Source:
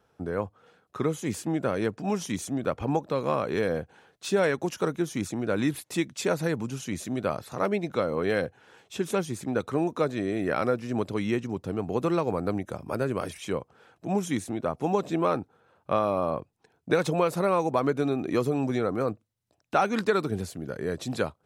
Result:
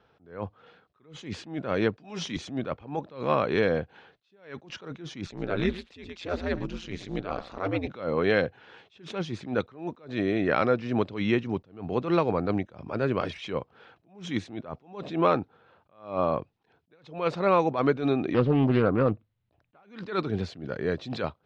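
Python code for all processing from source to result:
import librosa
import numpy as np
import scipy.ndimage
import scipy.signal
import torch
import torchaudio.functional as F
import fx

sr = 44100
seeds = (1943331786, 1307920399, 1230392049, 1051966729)

y = fx.chain(x, sr, fx.high_shelf(hz=3400.0, db=5.0),
    fx.doubler(ms=13.0, db=-11.0),
    fx.band_squash(depth_pct=40), at=(1.97, 2.37))
y = fx.chain(y, sr, fx.ring_mod(carrier_hz=90.0),
    fx.echo_single(ms=112, db=-16.0), at=(5.26, 7.88))
y = fx.chain(y, sr, fx.lowpass(hz=3100.0, slope=12),
    fx.low_shelf(hz=130.0, db=11.0),
    fx.doppler_dist(depth_ms=0.33), at=(18.34, 19.83))
y = scipy.signal.sosfilt(scipy.signal.butter(4, 4000.0, 'lowpass', fs=sr, output='sos'), y)
y = fx.high_shelf(y, sr, hz=2900.0, db=7.0)
y = fx.attack_slew(y, sr, db_per_s=140.0)
y = y * librosa.db_to_amplitude(2.5)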